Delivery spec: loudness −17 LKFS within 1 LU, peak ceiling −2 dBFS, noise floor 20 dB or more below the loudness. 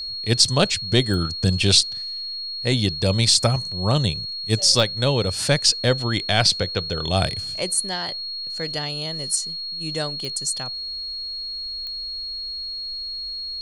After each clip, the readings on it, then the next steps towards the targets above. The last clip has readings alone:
number of clicks 5; interfering tone 4,300 Hz; level of the tone −28 dBFS; integrated loudness −21.5 LKFS; sample peak −2.5 dBFS; target loudness −17.0 LKFS
→ click removal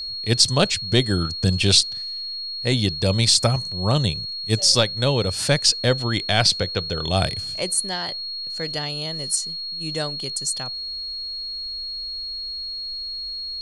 number of clicks 1; interfering tone 4,300 Hz; level of the tone −28 dBFS
→ notch filter 4,300 Hz, Q 30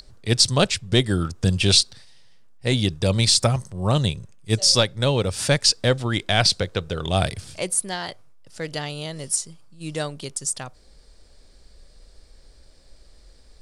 interfering tone none found; integrated loudness −21.5 LKFS; sample peak −2.5 dBFS; target loudness −17.0 LKFS
→ level +4.5 dB
brickwall limiter −2 dBFS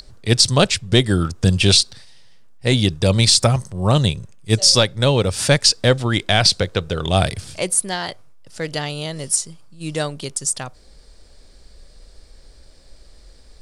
integrated loudness −17.5 LKFS; sample peak −2.0 dBFS; background noise floor −47 dBFS

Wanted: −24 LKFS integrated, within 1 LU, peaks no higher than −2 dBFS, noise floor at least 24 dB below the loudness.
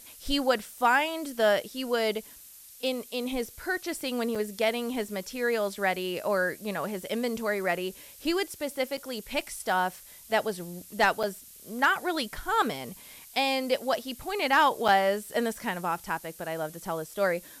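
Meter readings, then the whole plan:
number of dropouts 4; longest dropout 5.7 ms; background noise floor −50 dBFS; target noise floor −53 dBFS; integrated loudness −29.0 LKFS; sample peak −12.5 dBFS; target loudness −24.0 LKFS
→ repair the gap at 0:04.35/0:08.97/0:11.23/0:14.88, 5.7 ms
broadband denoise 6 dB, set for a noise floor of −50 dBFS
level +5 dB

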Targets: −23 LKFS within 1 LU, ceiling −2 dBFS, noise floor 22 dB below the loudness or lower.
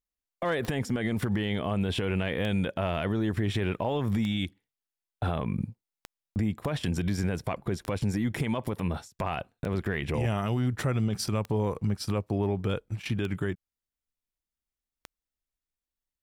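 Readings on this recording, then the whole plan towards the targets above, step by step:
number of clicks 9; integrated loudness −30.5 LKFS; sample peak −16.5 dBFS; target loudness −23.0 LKFS
→ click removal
level +7.5 dB

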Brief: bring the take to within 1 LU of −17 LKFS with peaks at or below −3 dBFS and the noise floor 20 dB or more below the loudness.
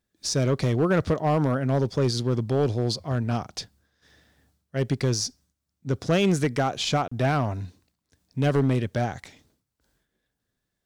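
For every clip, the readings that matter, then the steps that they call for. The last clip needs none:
share of clipped samples 1.3%; peaks flattened at −15.5 dBFS; number of dropouts 1; longest dropout 35 ms; integrated loudness −25.0 LKFS; sample peak −15.5 dBFS; target loudness −17.0 LKFS
→ clipped peaks rebuilt −15.5 dBFS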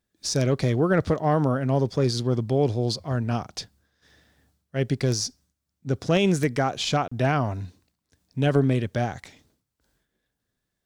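share of clipped samples 0.0%; number of dropouts 1; longest dropout 35 ms
→ repair the gap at 0:07.08, 35 ms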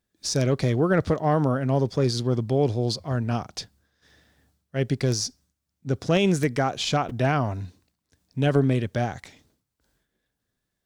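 number of dropouts 0; integrated loudness −24.5 LKFS; sample peak −8.5 dBFS; target loudness −17.0 LKFS
→ level +7.5 dB
brickwall limiter −3 dBFS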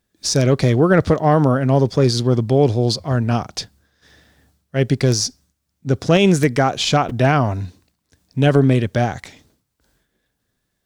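integrated loudness −17.0 LKFS; sample peak −3.0 dBFS; background noise floor −74 dBFS

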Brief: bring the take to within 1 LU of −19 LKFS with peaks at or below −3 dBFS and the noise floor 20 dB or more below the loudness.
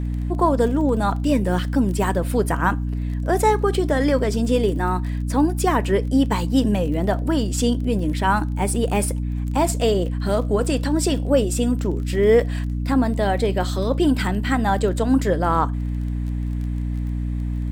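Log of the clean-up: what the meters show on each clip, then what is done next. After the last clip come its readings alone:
crackle rate 21 per second; mains hum 60 Hz; hum harmonics up to 300 Hz; level of the hum −22 dBFS; integrated loudness −21.0 LKFS; sample peak −5.5 dBFS; target loudness −19.0 LKFS
→ click removal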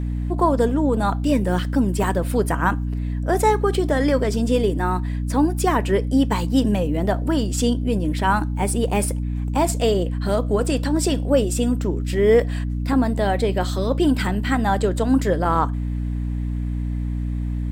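crackle rate 0.11 per second; mains hum 60 Hz; hum harmonics up to 300 Hz; level of the hum −22 dBFS
→ mains-hum notches 60/120/180/240/300 Hz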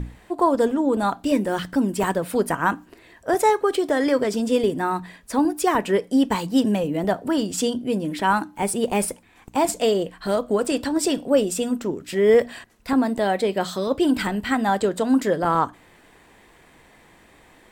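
mains hum none found; integrated loudness −22.0 LKFS; sample peak −7.0 dBFS; target loudness −19.0 LKFS
→ level +3 dB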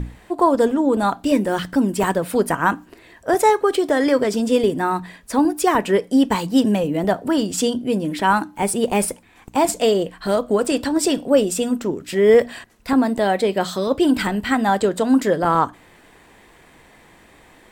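integrated loudness −19.0 LKFS; sample peak −4.0 dBFS; background noise floor −50 dBFS

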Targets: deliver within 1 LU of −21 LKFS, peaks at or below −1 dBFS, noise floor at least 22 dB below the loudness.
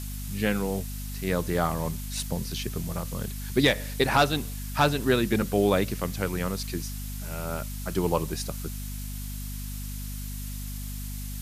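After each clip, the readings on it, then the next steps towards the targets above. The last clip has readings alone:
mains hum 50 Hz; hum harmonics up to 250 Hz; level of the hum −33 dBFS; background noise floor −35 dBFS; target noise floor −51 dBFS; integrated loudness −28.5 LKFS; sample peak −9.0 dBFS; target loudness −21.0 LKFS
→ hum removal 50 Hz, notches 5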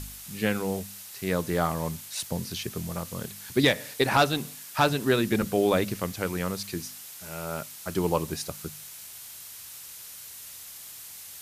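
mains hum none found; background noise floor −44 dBFS; target noise floor −51 dBFS
→ broadband denoise 7 dB, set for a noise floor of −44 dBFS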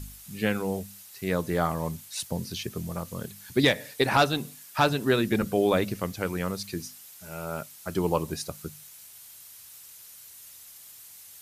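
background noise floor −49 dBFS; target noise floor −50 dBFS
→ broadband denoise 6 dB, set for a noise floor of −49 dBFS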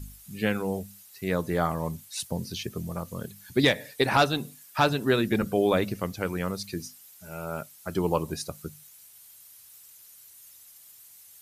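background noise floor −52 dBFS; integrated loudness −28.5 LKFS; sample peak −9.5 dBFS; target loudness −21.0 LKFS
→ level +7.5 dB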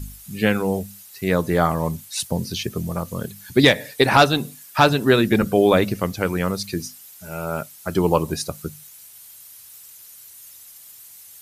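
integrated loudness −21.0 LKFS; sample peak −2.0 dBFS; background noise floor −45 dBFS

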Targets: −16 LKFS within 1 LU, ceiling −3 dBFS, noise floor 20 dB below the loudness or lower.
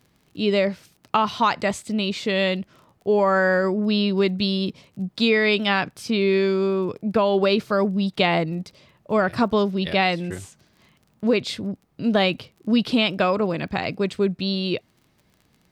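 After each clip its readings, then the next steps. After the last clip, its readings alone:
crackle rate 25 per second; integrated loudness −22.5 LKFS; sample peak −5.0 dBFS; target loudness −16.0 LKFS
→ click removal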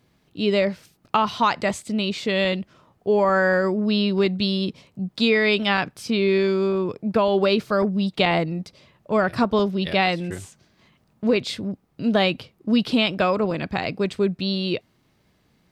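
crackle rate 0.064 per second; integrated loudness −22.5 LKFS; sample peak −5.0 dBFS; target loudness −16.0 LKFS
→ level +6.5 dB
brickwall limiter −3 dBFS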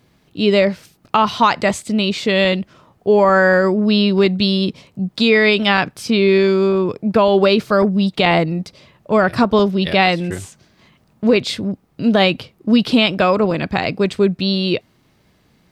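integrated loudness −16.0 LKFS; sample peak −3.0 dBFS; background noise floor −58 dBFS

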